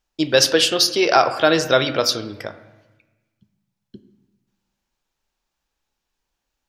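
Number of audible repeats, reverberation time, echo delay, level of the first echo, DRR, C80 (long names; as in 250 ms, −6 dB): no echo audible, 1.1 s, no echo audible, no echo audible, 11.0 dB, 14.5 dB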